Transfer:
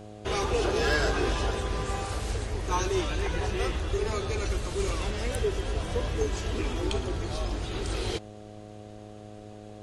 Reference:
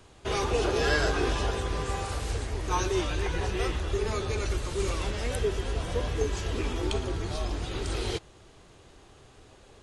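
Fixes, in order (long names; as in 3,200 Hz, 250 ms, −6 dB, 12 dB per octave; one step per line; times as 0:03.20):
clipped peaks rebuilt −17.5 dBFS
hum removal 105.3 Hz, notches 7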